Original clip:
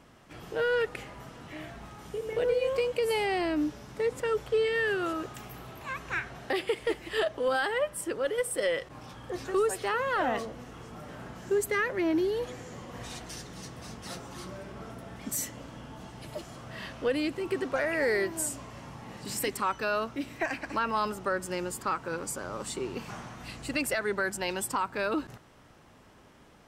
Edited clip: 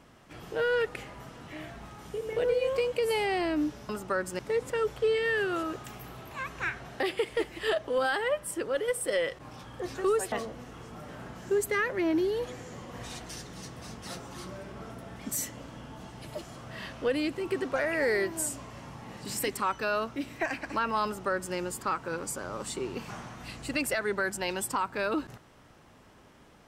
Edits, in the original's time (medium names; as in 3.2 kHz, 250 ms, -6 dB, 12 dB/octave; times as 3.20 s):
9.82–10.32 s: delete
21.05–21.55 s: copy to 3.89 s